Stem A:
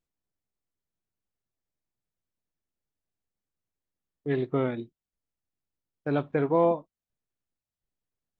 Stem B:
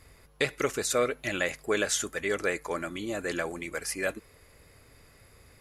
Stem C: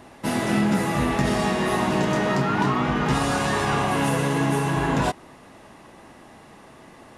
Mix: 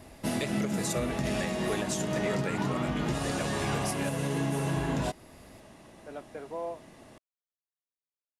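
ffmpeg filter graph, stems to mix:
-filter_complex "[0:a]highpass=400,volume=0.2[s0];[1:a]volume=1.06[s1];[2:a]asoftclip=type=hard:threshold=0.251,volume=0.75[s2];[s1][s2]amix=inputs=2:normalize=0,equalizer=f=1000:w=0.5:g=-7.5,alimiter=limit=0.0944:level=0:latency=1:release=335,volume=1[s3];[s0][s3]amix=inputs=2:normalize=0,equalizer=f=630:w=4.7:g=6.5"

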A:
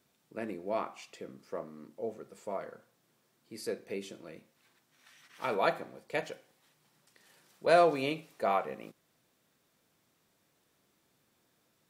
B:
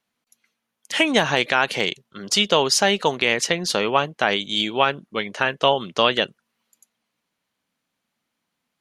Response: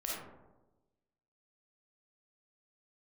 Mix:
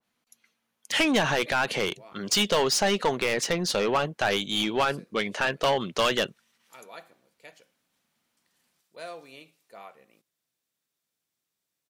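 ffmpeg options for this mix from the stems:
-filter_complex "[0:a]highshelf=f=2100:g=12,adelay=1300,volume=0.119[s0];[1:a]acontrast=35,asoftclip=type=tanh:threshold=0.237,adynamicequalizer=threshold=0.0316:dfrequency=1600:dqfactor=0.7:tfrequency=1600:tqfactor=0.7:attack=5:release=100:ratio=0.375:range=2:mode=cutabove:tftype=highshelf,volume=0.596[s1];[s0][s1]amix=inputs=2:normalize=0"

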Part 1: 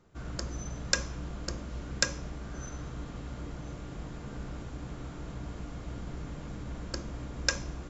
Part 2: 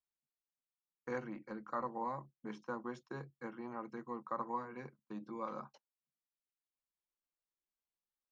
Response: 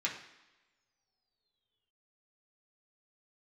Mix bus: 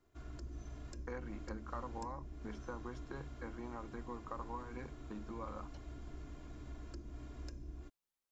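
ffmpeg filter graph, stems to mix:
-filter_complex "[0:a]aecho=1:1:2.9:0.66,acrossover=split=400[s0][s1];[s1]acompressor=threshold=0.00447:ratio=10[s2];[s0][s2]amix=inputs=2:normalize=0,volume=0.282[s3];[1:a]acompressor=threshold=0.00501:ratio=3,volume=1.26[s4];[s3][s4]amix=inputs=2:normalize=0"

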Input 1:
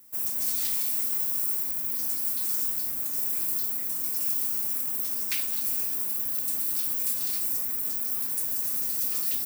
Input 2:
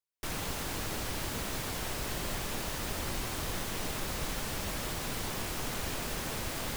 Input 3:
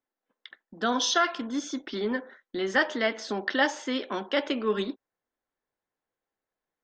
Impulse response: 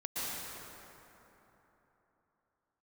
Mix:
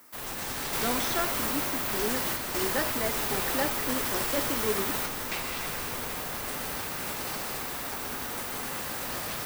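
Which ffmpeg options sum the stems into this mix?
-filter_complex "[0:a]equalizer=f=1300:w=1.5:g=4.5,asplit=2[s0][s1];[s1]highpass=f=720:p=1,volume=22.4,asoftclip=type=tanh:threshold=0.299[s2];[s0][s2]amix=inputs=2:normalize=0,lowpass=f=1400:p=1,volume=0.501,volume=1.06,asplit=2[s3][s4];[s4]volume=0.355[s5];[1:a]volume=0.376[s6];[2:a]equalizer=f=390:w=0.47:g=9,volume=0.251,asplit=2[s7][s8];[s8]apad=whole_len=416992[s9];[s3][s9]sidechaingate=range=0.355:threshold=0.00224:ratio=16:detection=peak[s10];[3:a]atrim=start_sample=2205[s11];[s5][s11]afir=irnorm=-1:irlink=0[s12];[s10][s6][s7][s12]amix=inputs=4:normalize=0"

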